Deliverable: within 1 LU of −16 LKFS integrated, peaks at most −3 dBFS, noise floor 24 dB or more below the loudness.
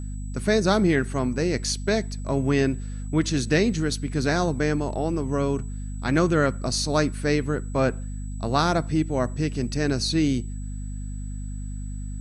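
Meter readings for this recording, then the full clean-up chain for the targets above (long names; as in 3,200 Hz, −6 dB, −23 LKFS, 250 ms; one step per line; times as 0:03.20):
mains hum 50 Hz; hum harmonics up to 250 Hz; level of the hum −30 dBFS; interfering tone 7,900 Hz; level of the tone −49 dBFS; integrated loudness −24.5 LKFS; sample peak −6.5 dBFS; target loudness −16.0 LKFS
→ mains-hum notches 50/100/150/200/250 Hz
notch filter 7,900 Hz, Q 30
level +8.5 dB
brickwall limiter −3 dBFS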